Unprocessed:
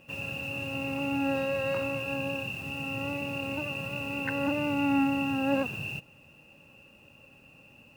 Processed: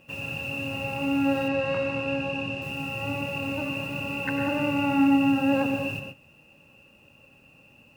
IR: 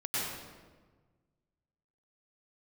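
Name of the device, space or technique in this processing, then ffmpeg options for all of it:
keyed gated reverb: -filter_complex "[0:a]asplit=3[link_01][link_02][link_03];[1:a]atrim=start_sample=2205[link_04];[link_02][link_04]afir=irnorm=-1:irlink=0[link_05];[link_03]apad=whole_len=351265[link_06];[link_05][link_06]sidechaingate=range=-33dB:threshold=-50dB:ratio=16:detection=peak,volume=-9.5dB[link_07];[link_01][link_07]amix=inputs=2:normalize=0,asettb=1/sr,asplit=3[link_08][link_09][link_10];[link_08]atrim=end=1.484[link_11];[link_09]atrim=start=1.48:end=2.62,asetpts=PTS-STARTPTS,afade=type=in:duration=0.004:curve=qsin,afade=type=out:start_time=1.136:duration=0.004:curve=qsin,lowpass=5700[link_12];[link_10]atrim=start=2.616[link_13];[link_11][link_12]acrossfade=duration=0.004:curve1=hsin:curve2=qsin[link_14];[link_14][link_13]acrossfade=duration=0.004:curve1=qsin:curve2=hsin"

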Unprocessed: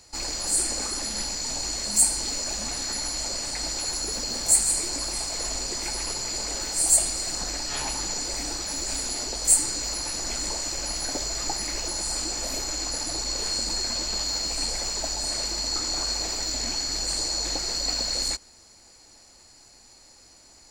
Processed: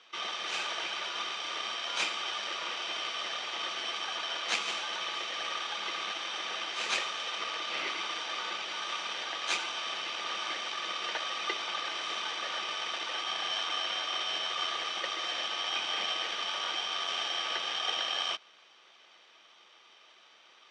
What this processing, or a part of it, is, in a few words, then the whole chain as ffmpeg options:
ring modulator pedal into a guitar cabinet: -af "aeval=exprs='val(0)*sgn(sin(2*PI*1200*n/s))':channel_layout=same,highpass=frequency=200:width=0.5412,highpass=frequency=200:width=1.3066,highpass=96,equalizer=frequency=170:width_type=q:width=4:gain=-6,equalizer=frequency=270:width_type=q:width=4:gain=-9,equalizer=frequency=2500:width_type=q:width=4:gain=9,lowpass=frequency=4200:width=0.5412,lowpass=frequency=4200:width=1.3066,volume=-3.5dB"

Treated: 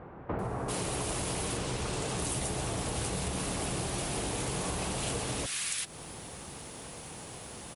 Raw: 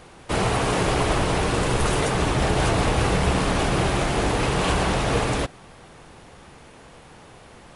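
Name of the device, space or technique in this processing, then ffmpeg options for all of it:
ASMR close-microphone chain: -filter_complex "[0:a]highpass=frequency=98:poles=1,aemphasis=mode=production:type=50fm,asettb=1/sr,asplit=3[link_01][link_02][link_03];[link_01]atrim=end=1.184[link_04];[link_02]atrim=start=1.18:end=1.83,asetpts=PTS-STARTPTS,afade=type=in:duration=0.004:curve=qsin,afade=type=out:start_time=0.646:duration=0.004:curve=qsin,lowpass=8000[link_05];[link_03]atrim=start=1.826[link_06];[link_04][link_05]acrossfade=duration=0.004:curve1=hsin:curve2=qsin[link_07];[link_07][link_06]acrossfade=duration=0.004:curve1=qsin:curve2=hsin,lowshelf=frequency=220:gain=5.5,acrossover=split=1600[link_08][link_09];[link_09]adelay=390[link_10];[link_08][link_10]amix=inputs=2:normalize=0,acompressor=threshold=-33dB:ratio=5,highshelf=frequency=6600:gain=4"

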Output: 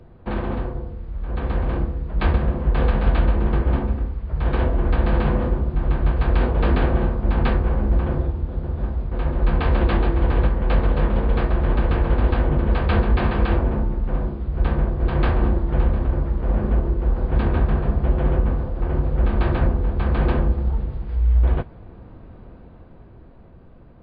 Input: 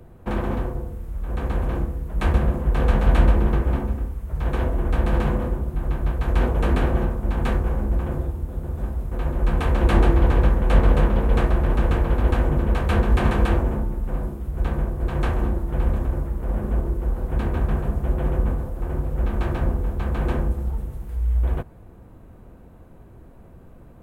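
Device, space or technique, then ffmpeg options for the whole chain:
low-bitrate web radio: -af "dynaudnorm=framelen=280:gausssize=11:maxgain=5dB,alimiter=limit=-8dB:level=0:latency=1:release=418" -ar 11025 -c:a libmp3lame -b:a 32k

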